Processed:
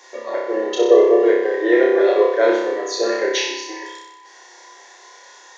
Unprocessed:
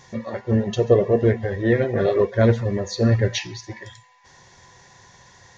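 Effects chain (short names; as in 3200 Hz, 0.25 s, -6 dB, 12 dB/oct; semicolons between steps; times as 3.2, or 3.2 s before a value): steep high-pass 310 Hz 72 dB/oct; flutter echo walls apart 5.3 m, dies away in 0.85 s; gain +2.5 dB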